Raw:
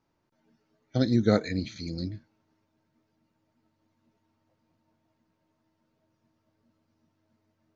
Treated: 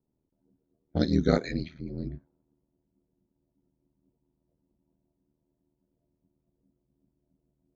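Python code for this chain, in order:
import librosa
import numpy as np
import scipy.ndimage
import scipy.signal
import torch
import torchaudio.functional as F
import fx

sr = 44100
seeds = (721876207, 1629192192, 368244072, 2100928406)

y = fx.env_lowpass(x, sr, base_hz=390.0, full_db=-21.0)
y = y * np.sin(2.0 * np.pi * 39.0 * np.arange(len(y)) / sr)
y = y * librosa.db_to_amplitude(2.0)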